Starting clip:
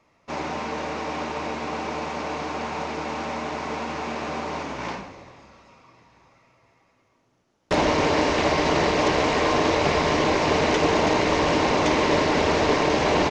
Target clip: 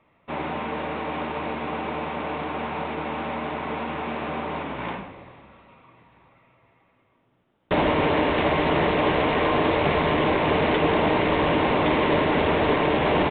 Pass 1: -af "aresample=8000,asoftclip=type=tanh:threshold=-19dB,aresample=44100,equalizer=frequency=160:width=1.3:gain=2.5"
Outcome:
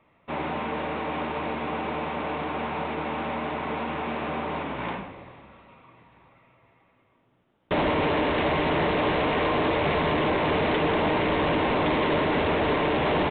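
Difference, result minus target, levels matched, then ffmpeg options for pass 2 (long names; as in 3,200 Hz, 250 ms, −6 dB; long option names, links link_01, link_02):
soft clipping: distortion +13 dB
-af "aresample=8000,asoftclip=type=tanh:threshold=-9.5dB,aresample=44100,equalizer=frequency=160:width=1.3:gain=2.5"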